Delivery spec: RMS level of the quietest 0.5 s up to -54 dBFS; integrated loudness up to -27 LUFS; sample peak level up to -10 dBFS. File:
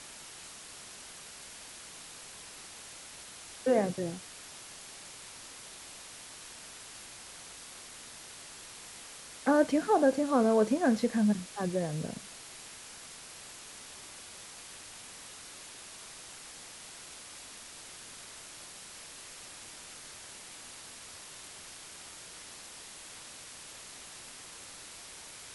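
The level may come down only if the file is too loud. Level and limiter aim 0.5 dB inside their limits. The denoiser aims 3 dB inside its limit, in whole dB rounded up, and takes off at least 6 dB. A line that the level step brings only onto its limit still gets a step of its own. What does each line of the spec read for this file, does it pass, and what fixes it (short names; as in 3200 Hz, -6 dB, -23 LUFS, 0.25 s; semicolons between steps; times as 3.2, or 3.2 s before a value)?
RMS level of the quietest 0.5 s -48 dBFS: fail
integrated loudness -36.5 LUFS: OK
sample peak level -14.5 dBFS: OK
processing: denoiser 9 dB, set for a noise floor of -48 dBFS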